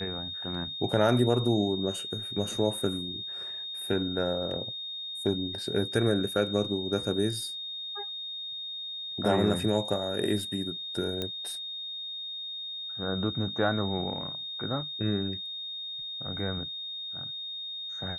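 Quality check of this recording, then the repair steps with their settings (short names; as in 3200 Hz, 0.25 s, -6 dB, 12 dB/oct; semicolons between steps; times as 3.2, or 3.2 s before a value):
tone 3700 Hz -35 dBFS
11.22 pop -18 dBFS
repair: de-click; notch 3700 Hz, Q 30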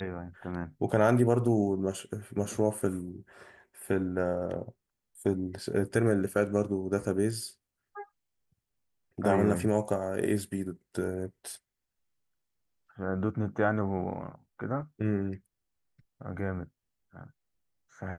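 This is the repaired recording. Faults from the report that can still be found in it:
11.22 pop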